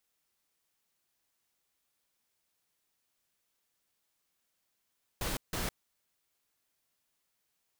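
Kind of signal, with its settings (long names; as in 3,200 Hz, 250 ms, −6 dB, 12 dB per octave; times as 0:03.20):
noise bursts pink, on 0.16 s, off 0.16 s, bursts 2, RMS −34.5 dBFS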